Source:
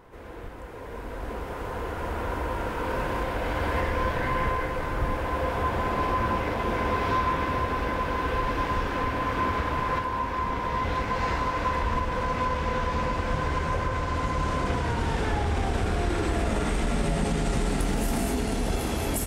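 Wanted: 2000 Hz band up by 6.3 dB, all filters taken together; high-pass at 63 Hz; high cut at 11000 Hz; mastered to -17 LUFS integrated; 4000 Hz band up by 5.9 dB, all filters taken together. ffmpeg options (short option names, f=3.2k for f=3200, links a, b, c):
-af "highpass=63,lowpass=11k,equalizer=f=2k:t=o:g=7,equalizer=f=4k:t=o:g=5,volume=9dB"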